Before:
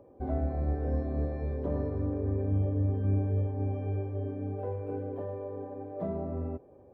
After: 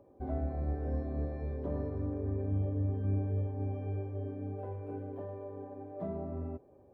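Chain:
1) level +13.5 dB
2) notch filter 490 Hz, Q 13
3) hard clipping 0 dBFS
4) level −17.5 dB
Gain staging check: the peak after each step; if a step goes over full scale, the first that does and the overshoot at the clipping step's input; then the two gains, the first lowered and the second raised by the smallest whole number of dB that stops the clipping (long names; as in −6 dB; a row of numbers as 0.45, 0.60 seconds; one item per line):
−5.0, −5.0, −5.0, −22.5 dBFS
no step passes full scale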